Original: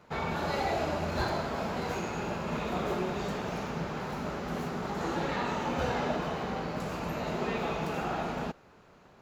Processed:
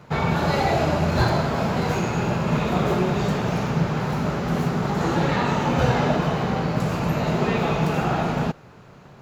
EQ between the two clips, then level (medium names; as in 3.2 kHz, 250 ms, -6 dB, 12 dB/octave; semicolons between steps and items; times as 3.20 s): peaking EQ 130 Hz +10.5 dB 0.84 oct; +8.5 dB